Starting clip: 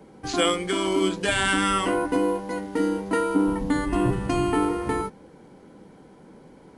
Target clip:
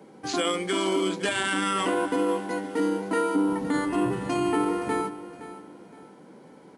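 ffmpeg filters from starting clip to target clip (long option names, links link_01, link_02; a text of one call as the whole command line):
ffmpeg -i in.wav -af "alimiter=limit=-16dB:level=0:latency=1:release=24,highpass=170,aecho=1:1:517|1034|1551:0.188|0.0603|0.0193" out.wav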